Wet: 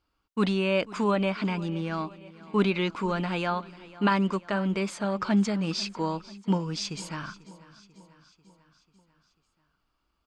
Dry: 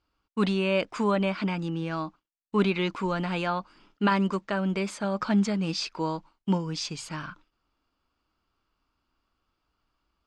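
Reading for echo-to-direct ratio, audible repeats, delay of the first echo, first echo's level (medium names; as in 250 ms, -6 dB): -17.5 dB, 4, 492 ms, -19.5 dB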